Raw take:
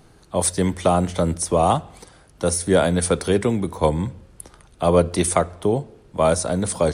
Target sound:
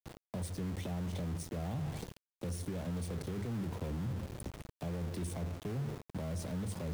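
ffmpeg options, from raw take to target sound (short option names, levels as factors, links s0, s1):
-filter_complex "[0:a]aemphasis=mode=reproduction:type=bsi,bandreject=f=50:t=h:w=6,bandreject=f=100:t=h:w=6,bandreject=f=150:t=h:w=6,agate=range=0.0224:threshold=0.0178:ratio=3:detection=peak,highpass=110,equalizer=f=1300:w=2:g=-14.5,areverse,acompressor=threshold=0.0631:ratio=10,areverse,alimiter=level_in=1.88:limit=0.0631:level=0:latency=1:release=39,volume=0.531,acrossover=split=140|280[s0][s1][s2];[s0]acompressor=threshold=0.00631:ratio=4[s3];[s1]acompressor=threshold=0.00355:ratio=4[s4];[s2]acompressor=threshold=0.00251:ratio=4[s5];[s3][s4][s5]amix=inputs=3:normalize=0,aeval=exprs='val(0)*gte(abs(val(0)),0.00398)':c=same,volume=1.78"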